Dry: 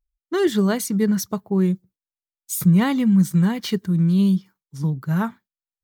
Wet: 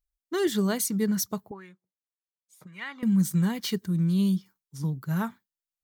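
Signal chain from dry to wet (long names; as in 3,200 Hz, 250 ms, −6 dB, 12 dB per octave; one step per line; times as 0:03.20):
0:01.51–0:03.03: envelope filter 420–2,100 Hz, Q 2.3, up, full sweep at −13 dBFS
high-shelf EQ 4,100 Hz +8 dB
level −6.5 dB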